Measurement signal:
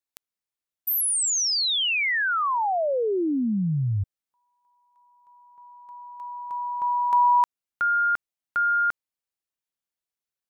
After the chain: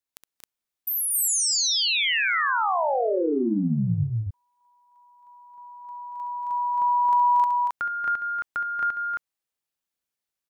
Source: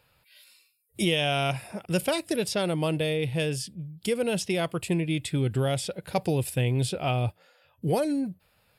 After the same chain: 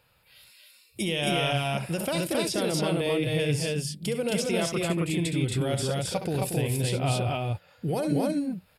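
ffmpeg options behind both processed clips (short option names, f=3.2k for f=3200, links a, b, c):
-af "acompressor=threshold=-25dB:ratio=5:attack=5.8:release=60:knee=1:detection=rms,aecho=1:1:67.06|233.2|268.2:0.355|0.447|0.891"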